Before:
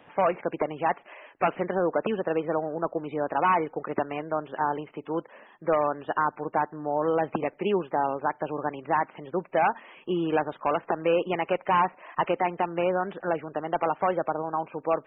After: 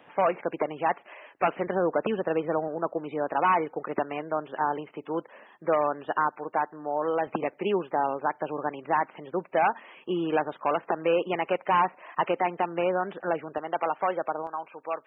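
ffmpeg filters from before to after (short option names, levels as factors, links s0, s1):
-af "asetnsamples=n=441:p=0,asendcmd='1.67 highpass f 50;2.68 highpass f 170;6.28 highpass f 420;7.27 highpass f 180;13.58 highpass f 480;14.47 highpass f 1300',highpass=f=180:p=1"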